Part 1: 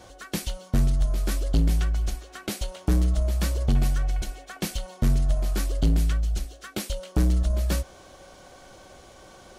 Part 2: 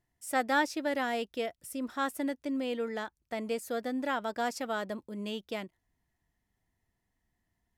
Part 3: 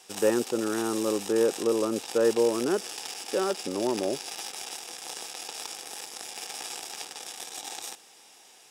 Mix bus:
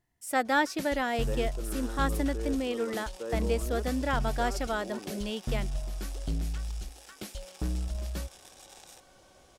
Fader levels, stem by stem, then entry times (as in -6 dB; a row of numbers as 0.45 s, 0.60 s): -10.5 dB, +2.0 dB, -14.0 dB; 0.45 s, 0.00 s, 1.05 s